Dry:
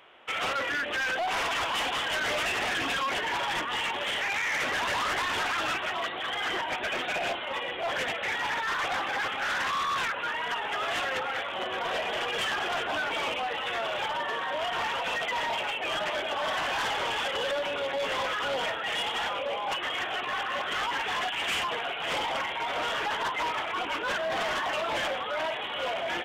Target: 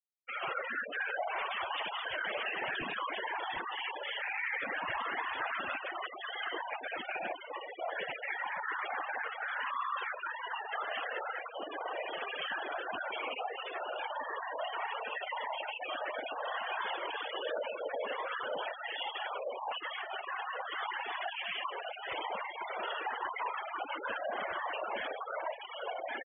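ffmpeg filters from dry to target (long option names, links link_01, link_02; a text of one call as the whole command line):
ffmpeg -i in.wav -af "afftfilt=real='hypot(re,im)*cos(2*PI*random(0))':imag='hypot(re,im)*sin(2*PI*random(1))':win_size=512:overlap=0.75,lowpass=frequency=3600:width=0.5412,lowpass=frequency=3600:width=1.3066,afftfilt=real='re*gte(hypot(re,im),0.0251)':imag='im*gte(hypot(re,im),0.0251)':win_size=1024:overlap=0.75" out.wav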